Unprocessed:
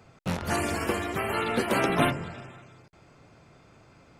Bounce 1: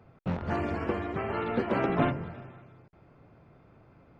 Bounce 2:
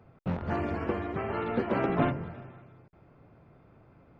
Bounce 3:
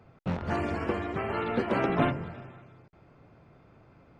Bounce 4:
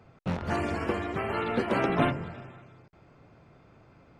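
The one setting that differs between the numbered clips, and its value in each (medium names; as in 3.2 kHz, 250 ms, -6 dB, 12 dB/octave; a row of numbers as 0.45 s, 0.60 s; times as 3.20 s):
tape spacing loss, at 10 kHz: 38 dB, 46 dB, 29 dB, 20 dB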